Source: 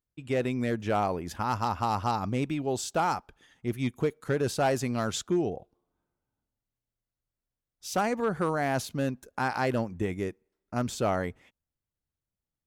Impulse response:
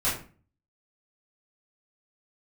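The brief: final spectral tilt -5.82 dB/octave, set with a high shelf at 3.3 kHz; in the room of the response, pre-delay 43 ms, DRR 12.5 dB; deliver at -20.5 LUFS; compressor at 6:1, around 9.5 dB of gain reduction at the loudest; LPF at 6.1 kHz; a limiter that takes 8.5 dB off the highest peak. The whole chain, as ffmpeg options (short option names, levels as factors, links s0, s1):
-filter_complex "[0:a]lowpass=6100,highshelf=f=3300:g=-8,acompressor=threshold=0.0224:ratio=6,alimiter=level_in=2:limit=0.0631:level=0:latency=1,volume=0.501,asplit=2[s0][s1];[1:a]atrim=start_sample=2205,adelay=43[s2];[s1][s2]afir=irnorm=-1:irlink=0,volume=0.0668[s3];[s0][s3]amix=inputs=2:normalize=0,volume=9.44"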